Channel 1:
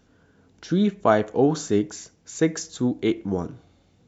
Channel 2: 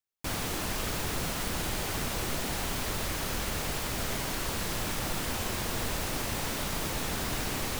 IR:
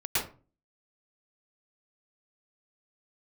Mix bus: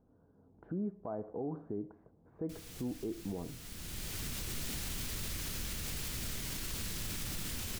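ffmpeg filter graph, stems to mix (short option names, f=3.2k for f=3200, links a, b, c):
-filter_complex "[0:a]lowpass=f=1k:w=0.5412,lowpass=f=1k:w=1.3066,alimiter=limit=-14dB:level=0:latency=1:release=84,acompressor=threshold=-46dB:ratio=1.5,volume=-7.5dB,asplit=2[a][b];[1:a]equalizer=f=770:w=0.57:g=-14,adelay=2250,volume=-4.5dB[c];[b]apad=whole_len=443077[d];[c][d]sidechaincompress=threshold=-54dB:ratio=12:attack=24:release=908[e];[a][e]amix=inputs=2:normalize=0,dynaudnorm=f=100:g=13:m=5dB,alimiter=level_in=5.5dB:limit=-24dB:level=0:latency=1:release=63,volume=-5.5dB"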